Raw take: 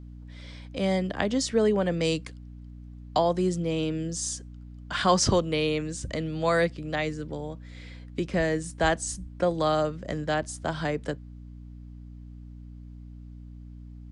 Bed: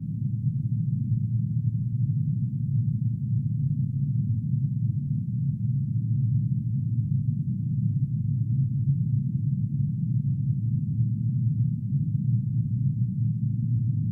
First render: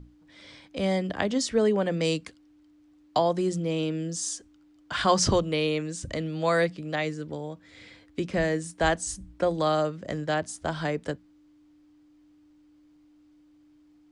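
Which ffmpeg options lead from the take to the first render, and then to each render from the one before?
-af "bandreject=f=60:t=h:w=6,bandreject=f=120:t=h:w=6,bandreject=f=180:t=h:w=6,bandreject=f=240:t=h:w=6"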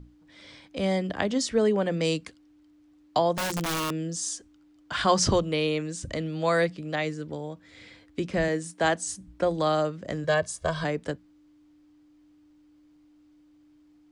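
-filter_complex "[0:a]asettb=1/sr,asplit=3[a][b][c];[a]atrim=end=3.334[d];[b]atrim=start=3.33:end=3.98,asetpts=PTS-STARTPTS,afade=t=in:d=0.004:c=qsin,afade=t=out:st=0.646:d=0.004:c=qsin,aeval=exprs='(mod(15.8*val(0)+1,2)-1)/15.8':c=same[e];[c]atrim=start=3.976[f];[d][e]acrossfade=d=0.004:c1=hsin:c2=qsin[g];[g][f]acrossfade=d=0.004:c1=qsin:c2=hsin,asettb=1/sr,asplit=3[h][i][j];[h]atrim=end=8.484[k];[i]atrim=start=8.48:end=9.27,asetpts=PTS-STARTPTS,afade=t=in:d=0.004:c=qsin,afade=t=out:st=0.786:d=0.004:c=qsin,highpass=140[l];[j]atrim=start=9.266[m];[k][l]acrossfade=d=0.004:c1=hsin:c2=qsin[n];[n][m]acrossfade=d=0.004:c1=qsin:c2=hsin,asettb=1/sr,asplit=3[o][p][q];[o]atrim=end=10.244[r];[p]atrim=start=10.24:end=10.84,asetpts=PTS-STARTPTS,afade=t=in:d=0.004:c=qsin,afade=t=out:st=0.596:d=0.004:c=qsin,aecho=1:1:1.8:0.91,atrim=end_sample=26460[s];[q]atrim=start=10.836[t];[r][s]acrossfade=d=0.004:c1=hsin:c2=qsin[u];[u][t]acrossfade=d=0.004:c1=qsin:c2=hsin"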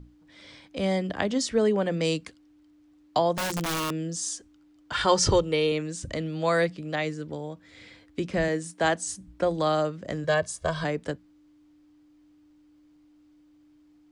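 -filter_complex "[0:a]asettb=1/sr,asplit=3[a][b][c];[a]atrim=end=4.924[d];[b]atrim=start=4.92:end=5.72,asetpts=PTS-STARTPTS,afade=t=in:d=0.004:c=qsin,afade=t=out:st=0.796:d=0.004:c=qsin,aecho=1:1:2.2:0.53,atrim=end_sample=35280[e];[c]atrim=start=5.716[f];[d][e]acrossfade=d=0.004:c1=hsin:c2=qsin[g];[g][f]acrossfade=d=0.004:c1=qsin:c2=hsin"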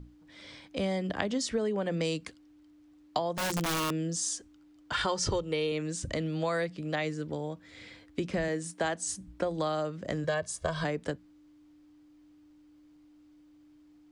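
-af "acompressor=threshold=-27dB:ratio=6"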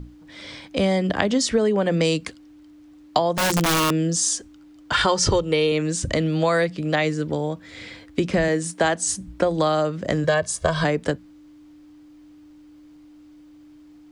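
-af "volume=10.5dB,alimiter=limit=-2dB:level=0:latency=1"

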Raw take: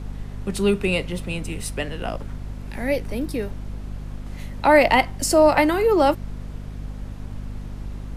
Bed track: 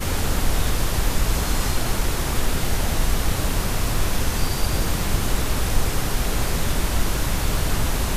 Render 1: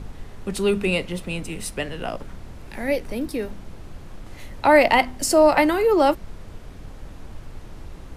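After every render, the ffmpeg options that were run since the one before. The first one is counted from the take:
-af "bandreject=f=50:t=h:w=4,bandreject=f=100:t=h:w=4,bandreject=f=150:t=h:w=4,bandreject=f=200:t=h:w=4,bandreject=f=250:t=h:w=4"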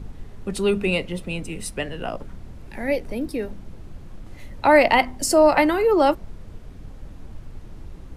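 -af "afftdn=nr=6:nf=-40"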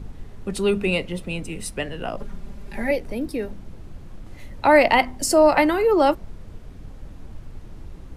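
-filter_complex "[0:a]asettb=1/sr,asplit=3[a][b][c];[a]atrim=end=2.174[d];[b]atrim=start=2.17:end=2.91,asetpts=PTS-STARTPTS,afade=t=in:d=0.004:c=qsin,afade=t=out:st=0.736:d=0.004:c=qsin,aecho=1:1:5:0.9,atrim=end_sample=32634[e];[c]atrim=start=2.906[f];[d][e]acrossfade=d=0.004:c1=hsin:c2=qsin[g];[g][f]acrossfade=d=0.004:c1=qsin:c2=hsin"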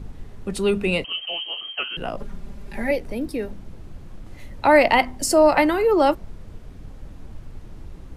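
-filter_complex "[0:a]asettb=1/sr,asplit=3[a][b][c];[a]atrim=end=1.044[d];[b]atrim=start=1.04:end=1.97,asetpts=PTS-STARTPTS,afade=t=in:d=0.004:c=qsin,afade=t=out:st=0.926:d=0.004:c=qsin,lowpass=f=2.7k:t=q:w=0.5098,lowpass=f=2.7k:t=q:w=0.6013,lowpass=f=2.7k:t=q:w=0.9,lowpass=f=2.7k:t=q:w=2.563,afreqshift=-3200[e];[c]atrim=start=1.966[f];[d][e]acrossfade=d=0.004:c1=hsin:c2=qsin[g];[g][f]acrossfade=d=0.004:c1=qsin:c2=hsin"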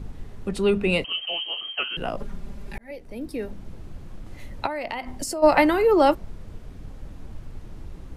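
-filter_complex "[0:a]asettb=1/sr,asplit=3[a][b][c];[a]atrim=end=0.494[d];[b]atrim=start=0.49:end=0.9,asetpts=PTS-STARTPTS,afade=t=in:d=0.004:c=qsin,afade=t=out:st=0.406:d=0.004:c=qsin,highshelf=f=5.4k:g=-9[e];[c]atrim=start=0.896[f];[d][e]acrossfade=d=0.004:c1=hsin:c2=qsin[g];[g][f]acrossfade=d=0.004:c1=qsin:c2=hsin,asplit=3[h][i][j];[h]afade=t=out:st=4.65:d=0.02[k];[i]acompressor=threshold=-26dB:ratio=16:attack=3.2:release=140:knee=1:detection=peak,afade=t=in:st=4.65:d=0.02,afade=t=out:st=5.42:d=0.02[l];[j]afade=t=in:st=5.42:d=0.02[m];[k][l][m]amix=inputs=3:normalize=0,asplit=2[n][o];[n]atrim=end=2.78,asetpts=PTS-STARTPTS,afade=t=out:st=2.776:d=0.004:c=hsin[p];[o]atrim=start=2.78,asetpts=PTS-STARTPTS,afade=t=in:d=0.89[q];[p][q]concat=n=2:v=0:a=1"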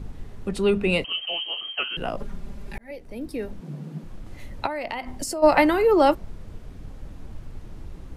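-filter_complex "[0:a]asettb=1/sr,asplit=3[a][b][c];[a]atrim=end=3.614[d];[b]atrim=start=3.61:end=4.04,asetpts=PTS-STARTPTS,afade=t=in:d=0.004:c=qsin,afade=t=out:st=0.426:d=0.004:c=qsin,afreqshift=140[e];[c]atrim=start=4.036[f];[d][e]acrossfade=d=0.004:c1=hsin:c2=qsin[g];[g][f]acrossfade=d=0.004:c1=qsin:c2=hsin"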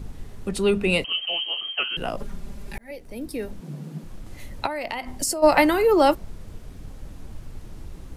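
-af "highshelf=f=5k:g=9"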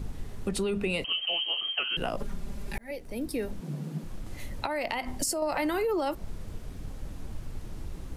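-af "alimiter=limit=-15.5dB:level=0:latency=1:release=59,acompressor=threshold=-26dB:ratio=5"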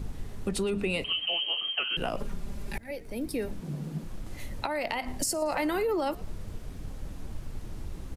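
-filter_complex "[0:a]asplit=4[a][b][c][d];[b]adelay=115,afreqshift=-110,volume=-21.5dB[e];[c]adelay=230,afreqshift=-220,volume=-29dB[f];[d]adelay=345,afreqshift=-330,volume=-36.6dB[g];[a][e][f][g]amix=inputs=4:normalize=0"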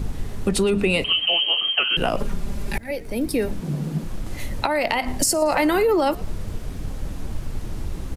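-af "volume=9.5dB"

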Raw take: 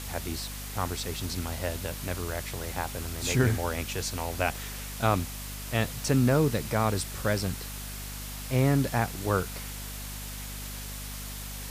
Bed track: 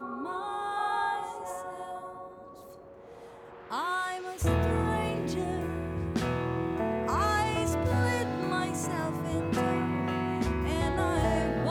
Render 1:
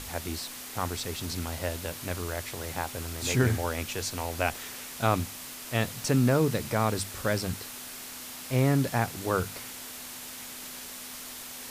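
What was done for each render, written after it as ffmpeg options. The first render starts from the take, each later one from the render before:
-af "bandreject=f=50:t=h:w=6,bandreject=f=100:t=h:w=6,bandreject=f=150:t=h:w=6,bandreject=f=200:t=h:w=6"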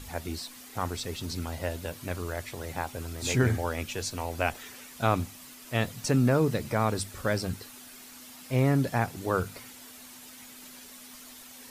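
-af "afftdn=nr=9:nf=-42"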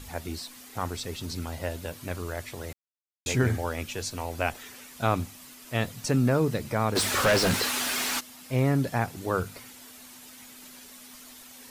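-filter_complex "[0:a]asplit=3[a][b][c];[a]afade=t=out:st=6.95:d=0.02[d];[b]asplit=2[e][f];[f]highpass=f=720:p=1,volume=34dB,asoftclip=type=tanh:threshold=-14dB[g];[e][g]amix=inputs=2:normalize=0,lowpass=f=3.9k:p=1,volume=-6dB,afade=t=in:st=6.95:d=0.02,afade=t=out:st=8.19:d=0.02[h];[c]afade=t=in:st=8.19:d=0.02[i];[d][h][i]amix=inputs=3:normalize=0,asplit=3[j][k][l];[j]atrim=end=2.73,asetpts=PTS-STARTPTS,afade=t=out:st=2.726:d=0.004:c=hsin[m];[k]atrim=start=2.73:end=3.26,asetpts=PTS-STARTPTS,volume=0[n];[l]atrim=start=3.26,asetpts=PTS-STARTPTS,afade=t=in:d=0.004:c=hsin[o];[m][n][o]concat=n=3:v=0:a=1"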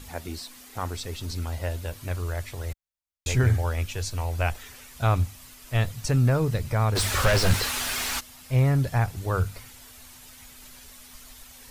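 -af "asubboost=boost=10:cutoff=76"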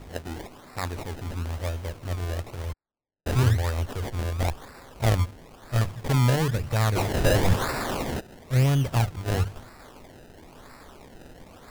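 -af "acrusher=samples=27:mix=1:aa=0.000001:lfo=1:lforange=27:lforate=1"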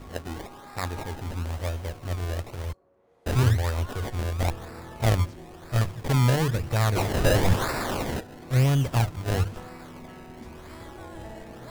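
-filter_complex "[1:a]volume=-15dB[a];[0:a][a]amix=inputs=2:normalize=0"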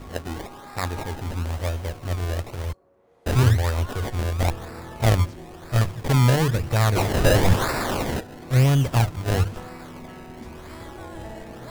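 -af "volume=3.5dB"

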